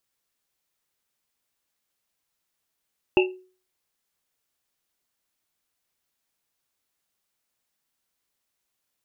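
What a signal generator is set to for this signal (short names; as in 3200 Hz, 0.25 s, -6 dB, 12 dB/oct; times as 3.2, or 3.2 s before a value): Risset drum, pitch 370 Hz, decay 0.40 s, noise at 2700 Hz, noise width 230 Hz, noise 30%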